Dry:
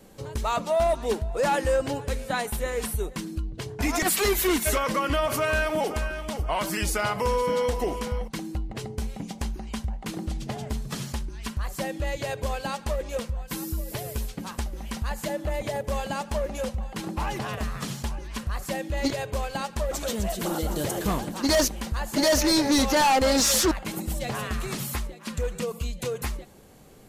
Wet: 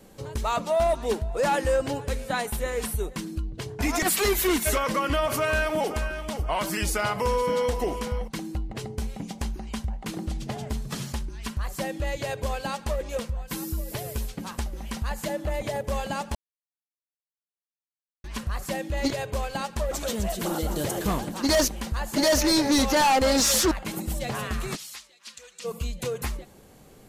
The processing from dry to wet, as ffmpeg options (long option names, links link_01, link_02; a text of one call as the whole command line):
ffmpeg -i in.wav -filter_complex "[0:a]asplit=3[link_01][link_02][link_03];[link_01]afade=type=out:start_time=24.75:duration=0.02[link_04];[link_02]bandpass=frequency=4900:width_type=q:width=1.1,afade=type=in:start_time=24.75:duration=0.02,afade=type=out:start_time=25.64:duration=0.02[link_05];[link_03]afade=type=in:start_time=25.64:duration=0.02[link_06];[link_04][link_05][link_06]amix=inputs=3:normalize=0,asplit=3[link_07][link_08][link_09];[link_07]atrim=end=16.35,asetpts=PTS-STARTPTS,afade=type=out:start_time=16.346:duration=0.004:curve=hsin[link_10];[link_08]atrim=start=16.35:end=18.24,asetpts=PTS-STARTPTS,volume=0[link_11];[link_09]atrim=start=18.24,asetpts=PTS-STARTPTS,afade=type=in:duration=0.004:curve=hsin[link_12];[link_10][link_11][link_12]concat=n=3:v=0:a=1" out.wav